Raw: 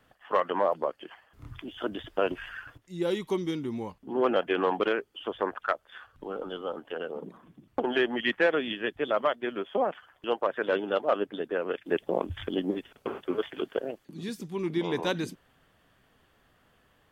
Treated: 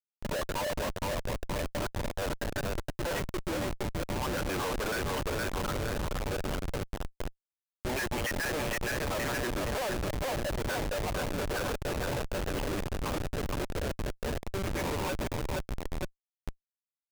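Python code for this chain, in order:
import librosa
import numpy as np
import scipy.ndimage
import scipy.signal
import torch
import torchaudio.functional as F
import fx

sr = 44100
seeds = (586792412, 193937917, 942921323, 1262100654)

p1 = fx.spec_dropout(x, sr, seeds[0], share_pct=38)
p2 = fx.peak_eq(p1, sr, hz=770.0, db=-2.5, octaves=2.9)
p3 = fx.level_steps(p2, sr, step_db=22)
p4 = p2 + (p3 * librosa.db_to_amplitude(-1.0))
p5 = p4 * (1.0 - 0.54 / 2.0 + 0.54 / 2.0 * np.cos(2.0 * np.pi * 0.62 * (np.arange(len(p4)) / sr)))
p6 = fx.quant_companded(p5, sr, bits=6)
p7 = fx.octave_resonator(p6, sr, note='F#', decay_s=0.28, at=(6.87, 7.85), fade=0.02)
p8 = p7 + 10.0 ** (-43.0 / 20.0) * np.sin(2.0 * np.pi * 580.0 * np.arange(len(p7)) / sr)
p9 = fx.cabinet(p8, sr, low_hz=360.0, low_slope=24, high_hz=2900.0, hz=(410.0, 600.0, 930.0, 1600.0, 2400.0), db=(-5, 4, 8, 7, 6))
p10 = p9 + fx.echo_feedback(p9, sr, ms=466, feedback_pct=55, wet_db=-6, dry=0)
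p11 = fx.schmitt(p10, sr, flips_db=-35.0)
y = p11 * librosa.db_to_amplitude(2.5)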